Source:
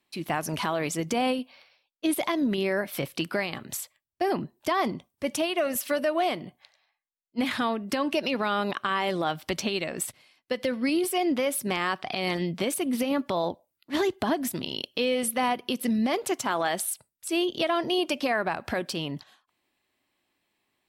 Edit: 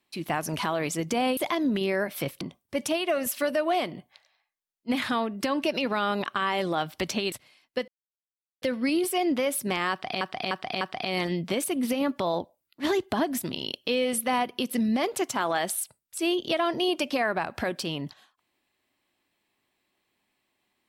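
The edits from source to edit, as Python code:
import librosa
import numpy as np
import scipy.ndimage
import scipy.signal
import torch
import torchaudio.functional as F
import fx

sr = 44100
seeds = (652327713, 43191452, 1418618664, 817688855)

y = fx.edit(x, sr, fx.cut(start_s=1.37, length_s=0.77),
    fx.cut(start_s=3.18, length_s=1.72),
    fx.cut(start_s=9.81, length_s=0.25),
    fx.insert_silence(at_s=10.62, length_s=0.74),
    fx.repeat(start_s=11.91, length_s=0.3, count=4), tone=tone)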